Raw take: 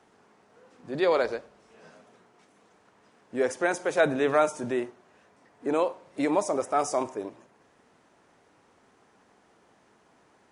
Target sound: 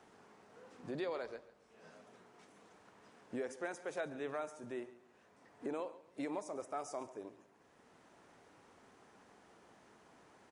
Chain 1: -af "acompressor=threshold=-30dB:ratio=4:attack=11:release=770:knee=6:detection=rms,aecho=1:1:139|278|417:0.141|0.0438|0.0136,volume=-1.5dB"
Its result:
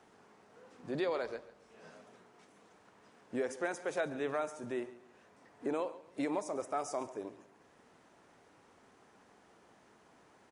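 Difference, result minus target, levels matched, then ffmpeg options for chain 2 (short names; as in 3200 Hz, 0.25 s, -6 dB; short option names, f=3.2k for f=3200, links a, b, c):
compressor: peak gain reduction -5.5 dB
-af "acompressor=threshold=-37.5dB:ratio=4:attack=11:release=770:knee=6:detection=rms,aecho=1:1:139|278|417:0.141|0.0438|0.0136,volume=-1.5dB"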